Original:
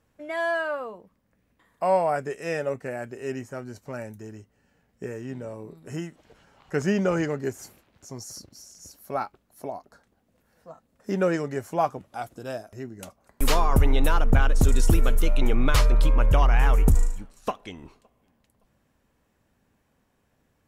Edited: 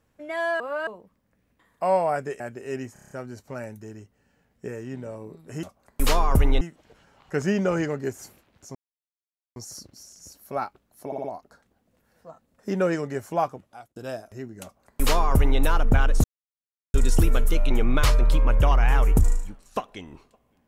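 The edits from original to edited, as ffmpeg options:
ffmpeg -i in.wav -filter_complex "[0:a]asplit=18[link_01][link_02][link_03][link_04][link_05][link_06][link_07][link_08][link_09][link_10][link_11][link_12][link_13][link_14][link_15][link_16][link_17][link_18];[link_01]atrim=end=0.602[link_19];[link_02]atrim=start=0.598:end=0.872,asetpts=PTS-STARTPTS,areverse[link_20];[link_03]atrim=start=0.868:end=2.402[link_21];[link_04]atrim=start=2.958:end=3.522[link_22];[link_05]atrim=start=3.488:end=3.522[link_23];[link_06]atrim=start=3.488:end=3.522[link_24];[link_07]atrim=start=3.488:end=3.522[link_25];[link_08]atrim=start=3.488:end=3.522[link_26];[link_09]atrim=start=3.488:end=3.522[link_27];[link_10]atrim=start=3.488:end=6.012[link_28];[link_11]atrim=start=13.038:end=14.022[link_29];[link_12]atrim=start=6.008:end=8.15,asetpts=PTS-STARTPTS,afade=type=out:start_time=2.138:duration=0.004:curve=hsin,apad=pad_dur=0.81[link_30];[link_13]atrim=start=8.15:end=9.712,asetpts=PTS-STARTPTS,afade=type=in:duration=0.004:curve=hsin[link_31];[link_14]atrim=start=9.648:end=9.712[link_32];[link_15]atrim=start=9.648:end=9.712[link_33];[link_16]atrim=start=9.648:end=12.37,asetpts=PTS-STARTPTS,afade=type=out:start_time=2.142:duration=0.58[link_34];[link_17]atrim=start=12.37:end=14.65,asetpts=PTS-STARTPTS,afade=type=in:duration=0.004:curve=hsin,afade=type=out:start_time=2.276:duration=0.004:curve=hsin,apad=pad_dur=0.7[link_35];[link_18]atrim=start=14.65,asetpts=PTS-STARTPTS,afade=type=in:duration=0.004:curve=hsin[link_36];[link_19][link_20]acrossfade=duration=0.004:curve1=hsin:curve2=hsin[link_37];[link_37][link_21]acrossfade=duration=0.004:curve1=hsin:curve2=hsin[link_38];[link_38][link_22]acrossfade=duration=0.004:curve1=hsin:curve2=hsin[link_39];[link_39][link_23]acrossfade=duration=0.004:curve1=hsin:curve2=hsin[link_40];[link_40][link_24]acrossfade=duration=0.004:curve1=hsin:curve2=hsin[link_41];[link_41][link_25]acrossfade=duration=0.004:curve1=hsin:curve2=hsin[link_42];[link_42][link_26]acrossfade=duration=0.004:curve1=hsin:curve2=hsin[link_43];[link_43][link_27]acrossfade=duration=0.004:curve1=hsin:curve2=hsin[link_44];[link_44][link_28]acrossfade=duration=0.004:curve1=hsin:curve2=hsin[link_45];[link_45][link_29]acrossfade=duration=0.004:curve1=hsin:curve2=hsin[link_46];[link_30][link_31]concat=n=2:v=0:a=1[link_47];[link_46][link_47]acrossfade=duration=0.004:curve1=hsin:curve2=hsin[link_48];[link_48][link_32]acrossfade=duration=0.004:curve1=hsin:curve2=hsin[link_49];[link_49][link_33]acrossfade=duration=0.004:curve1=hsin:curve2=hsin[link_50];[link_34][link_35][link_36]concat=n=3:v=0:a=1[link_51];[link_50][link_51]acrossfade=duration=0.004:curve1=hsin:curve2=hsin" out.wav

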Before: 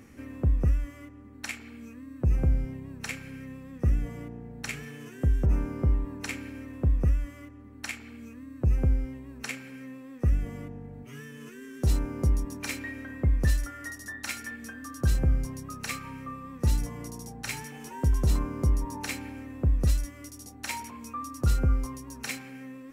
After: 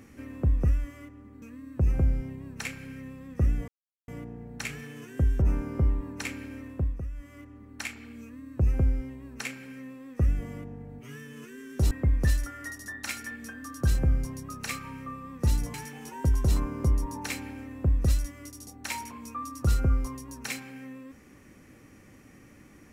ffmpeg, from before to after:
ffmpeg -i in.wav -filter_complex "[0:a]asplit=7[link_01][link_02][link_03][link_04][link_05][link_06][link_07];[link_01]atrim=end=1.422[link_08];[link_02]atrim=start=1.858:end=4.12,asetpts=PTS-STARTPTS,afade=type=out:start_time=2.258:duration=0.004:curve=hsin,apad=pad_dur=0.4[link_09];[link_03]atrim=start=4.12:end=7.06,asetpts=PTS-STARTPTS,afade=type=in:duration=0.004:curve=hsin,afade=type=out:start_time=2.57:duration=0.37:silence=0.251189[link_10];[link_04]atrim=start=7.06:end=7.15,asetpts=PTS-STARTPTS,volume=-12dB[link_11];[link_05]atrim=start=7.15:end=11.952,asetpts=PTS-STARTPTS,afade=type=in:duration=0.37:silence=0.251189[link_12];[link_06]atrim=start=13.108:end=16.942[link_13];[link_07]atrim=start=17.528[link_14];[link_09][link_10][link_11][link_12]concat=n=4:v=0:a=1[link_15];[link_08][link_15]acrossfade=duration=0.004:curve1=hsin:curve2=hsin[link_16];[link_16][link_13]acrossfade=duration=0.004:curve1=hsin:curve2=hsin[link_17];[link_17][link_14]acrossfade=duration=0.004:curve1=hsin:curve2=hsin" out.wav

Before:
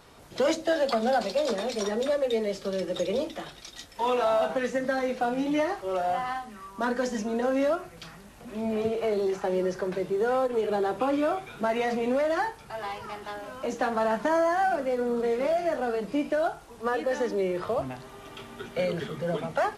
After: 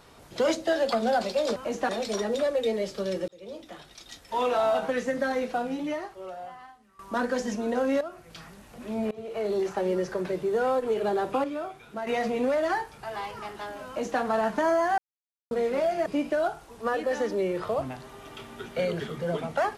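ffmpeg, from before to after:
ffmpeg -i in.wav -filter_complex "[0:a]asplit=12[link_01][link_02][link_03][link_04][link_05][link_06][link_07][link_08][link_09][link_10][link_11][link_12];[link_01]atrim=end=1.562[link_13];[link_02]atrim=start=13.538:end=13.872[link_14];[link_03]atrim=start=1.558:end=2.95,asetpts=PTS-STARTPTS,afade=type=out:start_time=1.388:duration=0.004:curve=hsin[link_15];[link_04]atrim=start=2.95:end=6.66,asetpts=PTS-STARTPTS,afade=type=in:duration=1.45:curve=qsin,afade=type=out:start_time=2.12:duration=1.59:curve=qua:silence=0.125893[link_16];[link_05]atrim=start=6.66:end=7.68,asetpts=PTS-STARTPTS,afade=type=in:duration=0.004:curve=hsin:silence=0.125893,afade=type=out:start_time=1.016:duration=0.004:curve=hsin:silence=0.211349[link_17];[link_06]atrim=start=7.68:end=8.78,asetpts=PTS-STARTPTS,afade=type=in:duration=0.43:silence=0.211349,afade=type=out:start_time=1.096:duration=0.004:curve=hsin:silence=0.0668344[link_18];[link_07]atrim=start=8.78:end=11.112,asetpts=PTS-STARTPTS,afade=type=in:duration=0.45:silence=0.0668344[link_19];[link_08]atrim=start=11.108:end=11.742,asetpts=PTS-STARTPTS,volume=-7.5dB[link_20];[link_09]atrim=start=11.738:end=14.65,asetpts=PTS-STARTPTS,afade=type=out:start_time=2.908:duration=0.004:curve=hsin[link_21];[link_10]atrim=start=14.65:end=15.18,asetpts=PTS-STARTPTS,volume=0[link_22];[link_11]atrim=start=15.18:end=15.732,asetpts=PTS-STARTPTS,afade=type=in:duration=0.004:curve=hsin[link_23];[link_12]atrim=start=16.058[link_24];[link_13][link_14]acrossfade=duration=0.004:curve1=hsin:curve2=hsin[link_25];[link_15][link_16][link_17][link_18][link_19]concat=n=5:v=0:a=1[link_26];[link_25][link_26]acrossfade=duration=0.004:curve1=hsin:curve2=hsin[link_27];[link_27][link_20]acrossfade=duration=0.004:curve1=hsin:curve2=hsin[link_28];[link_21][link_22][link_23]concat=n=3:v=0:a=1[link_29];[link_28][link_29]acrossfade=duration=0.004:curve1=hsin:curve2=hsin[link_30];[link_30][link_24]acrossfade=duration=0.004:curve1=hsin:curve2=hsin" out.wav

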